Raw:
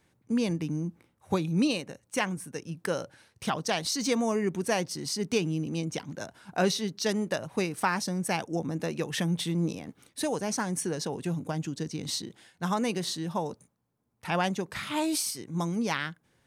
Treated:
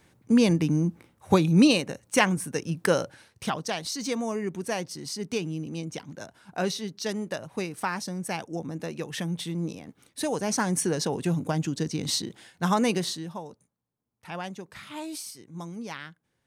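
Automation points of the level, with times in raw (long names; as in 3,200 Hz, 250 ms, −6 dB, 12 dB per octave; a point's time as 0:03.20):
0:02.92 +7.5 dB
0:03.77 −2.5 dB
0:09.88 −2.5 dB
0:10.67 +5 dB
0:12.96 +5 dB
0:13.43 −8 dB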